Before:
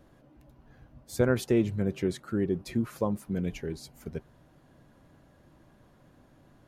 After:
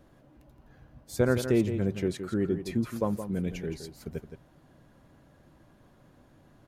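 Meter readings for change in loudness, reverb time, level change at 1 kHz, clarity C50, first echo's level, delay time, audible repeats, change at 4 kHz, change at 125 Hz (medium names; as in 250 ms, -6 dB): +0.5 dB, no reverb, +0.5 dB, no reverb, -9.5 dB, 169 ms, 1, +0.5 dB, +0.5 dB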